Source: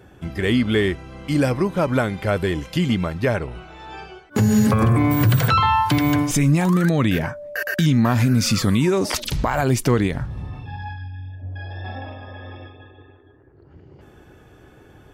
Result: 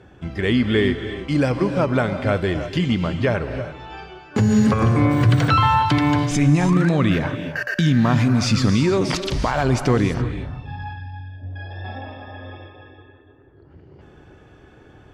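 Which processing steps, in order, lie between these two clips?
LPF 5800 Hz 12 dB/oct; non-linear reverb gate 0.36 s rising, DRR 8.5 dB

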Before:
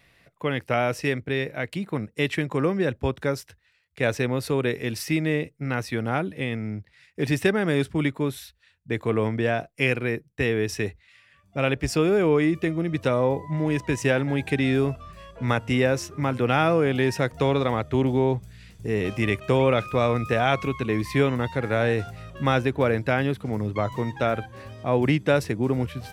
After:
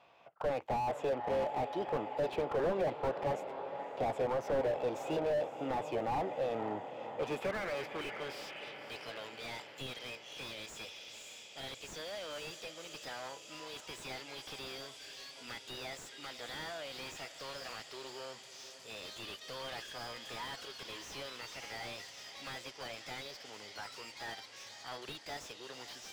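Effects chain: in parallel at -2.5 dB: compressor, threshold -31 dBFS, peak gain reduction 15 dB; on the sum: formant shift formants +5 st; soft clip -12.5 dBFS, distortion -17 dB; band-pass sweep 850 Hz -> 5700 Hz, 6.82–9.24; on a send: diffused feedback echo 0.546 s, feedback 68%, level -14.5 dB; on the sum: slew limiter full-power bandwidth 13 Hz; gain +3.5 dB

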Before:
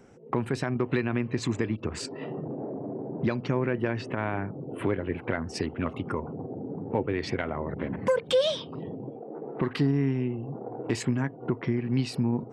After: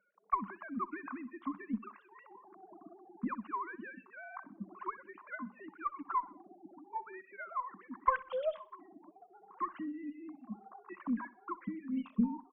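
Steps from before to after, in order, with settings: sine-wave speech; reverb removal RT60 0.53 s; double band-pass 460 Hz, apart 2.5 oct; added harmonics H 2 -19 dB, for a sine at -25 dBFS; feedback echo 63 ms, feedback 43%, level -18.5 dB; gain +10 dB

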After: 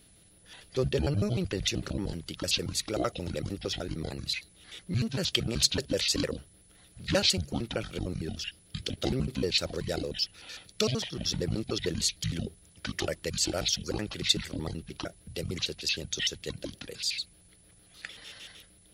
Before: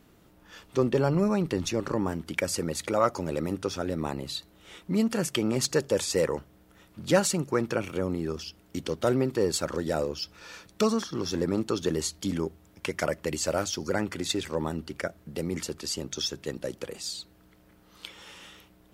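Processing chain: trilling pitch shifter -10 st, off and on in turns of 76 ms; ten-band EQ 250 Hz -7 dB, 1000 Hz -11 dB, 4000 Hz +8 dB; whine 10000 Hz -60 dBFS

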